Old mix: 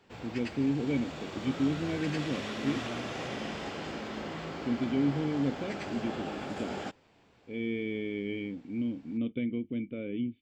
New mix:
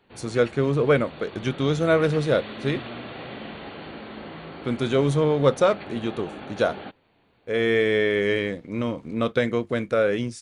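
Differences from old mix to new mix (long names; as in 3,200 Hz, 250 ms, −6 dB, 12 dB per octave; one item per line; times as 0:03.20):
speech: remove formant resonators in series i
background: add linear-phase brick-wall low-pass 4,600 Hz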